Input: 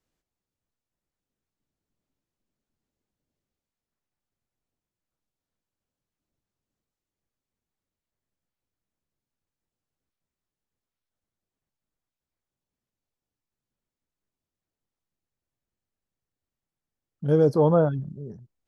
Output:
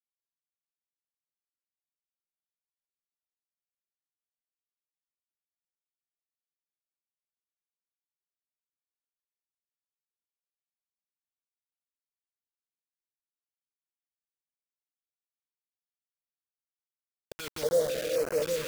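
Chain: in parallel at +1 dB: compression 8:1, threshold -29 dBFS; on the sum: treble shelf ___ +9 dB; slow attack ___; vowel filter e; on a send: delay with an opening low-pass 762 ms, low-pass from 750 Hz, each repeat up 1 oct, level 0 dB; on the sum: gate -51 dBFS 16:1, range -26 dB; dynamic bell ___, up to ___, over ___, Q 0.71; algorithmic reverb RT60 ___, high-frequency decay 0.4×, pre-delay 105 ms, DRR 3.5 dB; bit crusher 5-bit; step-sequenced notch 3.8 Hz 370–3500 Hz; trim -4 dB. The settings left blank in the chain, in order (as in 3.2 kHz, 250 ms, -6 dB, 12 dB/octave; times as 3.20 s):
3.1 kHz, 171 ms, 100 Hz, +5 dB, -43 dBFS, 2.8 s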